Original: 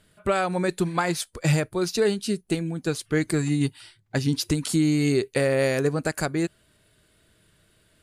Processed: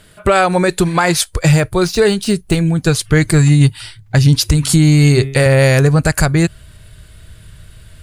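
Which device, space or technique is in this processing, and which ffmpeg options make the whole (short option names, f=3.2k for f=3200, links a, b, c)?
mastering chain: -filter_complex "[0:a]asettb=1/sr,asplit=3[a][b][c];[a]atrim=end=4.444[d];[b]atrim=start=4.44:end=5.46,asetpts=PTS-STARTPTS,afade=t=in:d=0.004:c=qsin,afade=t=out:st=1.016:d=0.004:c=qsin,bandreject=f=135.9:t=h:w=4,bandreject=f=271.8:t=h:w=4,bandreject=f=407.7:t=h:w=4,bandreject=f=543.6:t=h:w=4,bandreject=f=679.5:t=h:w=4,bandreject=f=815.4:t=h:w=4,bandreject=f=951.3:t=h:w=4,bandreject=f=1.0872k:t=h:w=4,bandreject=f=1.2231k:t=h:w=4,bandreject=f=1.359k:t=h:w=4,bandreject=f=1.4949k:t=h:w=4,bandreject=f=1.6308k:t=h:w=4,bandreject=f=1.7667k:t=h:w=4,bandreject=f=1.9026k:t=h:w=4,bandreject=f=2.0385k:t=h:w=4,bandreject=f=2.1744k:t=h:w=4,bandreject=f=2.3103k:t=h:w=4,bandreject=f=2.4462k:t=h:w=4,bandreject=f=2.5821k:t=h:w=4,bandreject=f=2.718k:t=h:w=4,bandreject=f=2.8539k:t=h:w=4,bandreject=f=2.9898k:t=h:w=4,bandreject=f=3.1257k:t=h:w=4,bandreject=f=3.2616k:t=h:w=4,bandreject=f=3.3975k:t=h:w=4,bandreject=f=3.5334k:t=h:w=4,bandreject=f=3.6693k:t=h:w=4[e];[c]atrim=start=5.456[f];[d][e]acrossfade=d=0.004:c1=hsin:c2=qsin[g];[g][f]acrossfade=d=0.004:c1=qsin:c2=hsin,asubboost=boost=7:cutoff=120,equalizer=f=230:t=o:w=1.2:g=-3.5,acompressor=threshold=-26dB:ratio=1.5,asoftclip=type=tanh:threshold=-12dB,alimiter=level_in=17dB:limit=-1dB:release=50:level=0:latency=1,asettb=1/sr,asplit=3[h][i][j];[h]atrim=end=1.504[k];[i]atrim=start=1.5:end=2.9,asetpts=PTS-STARTPTS,afade=t=in:d=0.004:c=qsin,afade=t=out:st=1.396:d=0.004:c=qsin,deesser=0.35[l];[j]atrim=start=2.896[m];[k][l]acrossfade=d=0.004:c1=hsin:c2=qsin[n];[n][m]acrossfade=d=0.004:c1=qsin:c2=hsin,volume=-1.5dB"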